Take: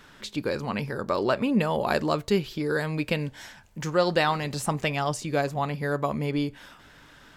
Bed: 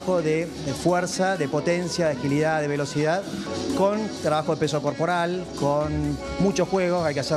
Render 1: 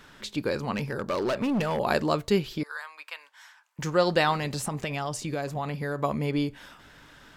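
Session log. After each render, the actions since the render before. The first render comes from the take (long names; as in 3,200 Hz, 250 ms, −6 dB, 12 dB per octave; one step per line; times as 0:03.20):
0:00.74–0:01.79: hard clipping −23 dBFS
0:02.63–0:03.79: four-pole ladder high-pass 930 Hz, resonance 50%
0:04.55–0:06.00: downward compressor, threshold −26 dBFS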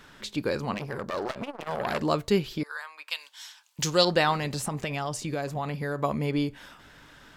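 0:00.74–0:02.01: saturating transformer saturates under 2,500 Hz
0:03.10–0:04.05: high shelf with overshoot 2,500 Hz +10.5 dB, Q 1.5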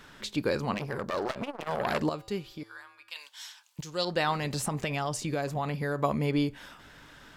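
0:02.09–0:03.16: tuned comb filter 110 Hz, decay 1.3 s, harmonics odd, mix 70%
0:03.81–0:04.60: fade in, from −18 dB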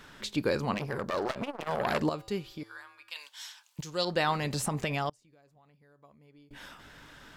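0:05.09–0:06.51: gate with flip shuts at −31 dBFS, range −31 dB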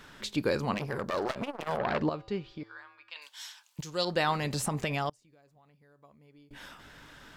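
0:01.77–0:03.22: high-frequency loss of the air 170 metres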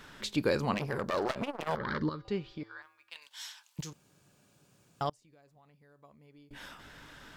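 0:01.75–0:02.25: phaser with its sweep stopped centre 2,600 Hz, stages 6
0:02.82–0:03.31: mu-law and A-law mismatch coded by A
0:03.93–0:05.01: fill with room tone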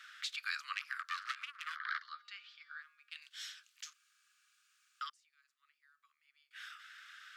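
Butterworth high-pass 1,200 Hz 96 dB per octave
high-shelf EQ 8,400 Hz −11 dB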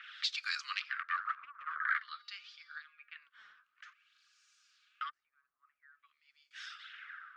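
phase shifter 0.72 Hz, delay 5 ms, feedback 37%
auto-filter low-pass sine 0.5 Hz 990–6,100 Hz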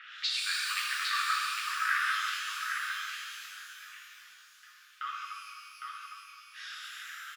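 on a send: single-tap delay 807 ms −5 dB
on the sum: reverb with rising layers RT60 2.2 s, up +12 semitones, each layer −8 dB, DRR −4.5 dB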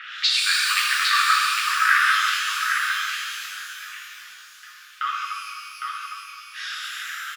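level +11.5 dB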